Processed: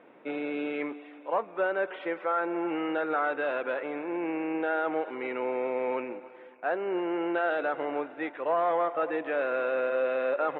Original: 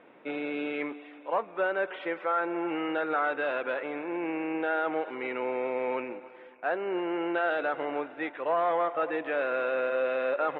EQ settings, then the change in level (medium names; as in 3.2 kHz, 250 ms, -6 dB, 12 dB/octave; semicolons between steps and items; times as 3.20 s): high-pass 210 Hz 6 dB/octave; tilt EQ -1.5 dB/octave; 0.0 dB